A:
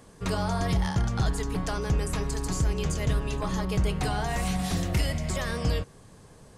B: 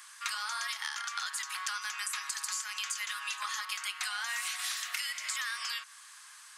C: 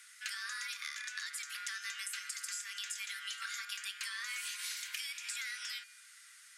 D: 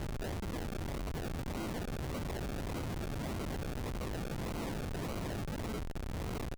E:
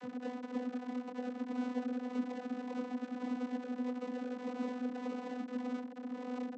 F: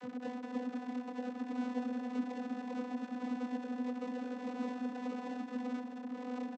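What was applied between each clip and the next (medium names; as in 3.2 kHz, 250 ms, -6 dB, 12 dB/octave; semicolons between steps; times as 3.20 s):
steep high-pass 1.2 kHz 36 dB/octave; compression 5:1, threshold -42 dBFS, peak gain reduction 10 dB; trim +9 dB
feedback comb 420 Hz, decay 0.81 s, mix 70%; frequency shift +320 Hz; trim +4.5 dB
compression 6:1, threshold -51 dBFS, peak gain reduction 14.5 dB; decimation with a swept rate 35×, swing 60% 1.7 Hz; Schmitt trigger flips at -58 dBFS; trim +17 dB
vocoder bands 32, saw 249 Hz; trim +2 dB
delay 214 ms -9 dB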